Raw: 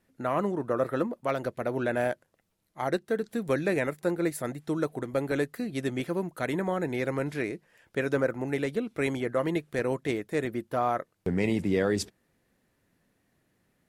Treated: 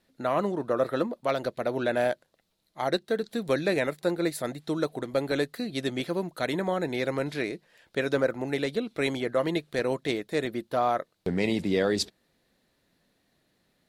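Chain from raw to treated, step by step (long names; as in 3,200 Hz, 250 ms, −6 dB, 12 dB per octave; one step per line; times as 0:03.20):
graphic EQ with 15 bands 100 Hz −5 dB, 630 Hz +3 dB, 4,000 Hz +11 dB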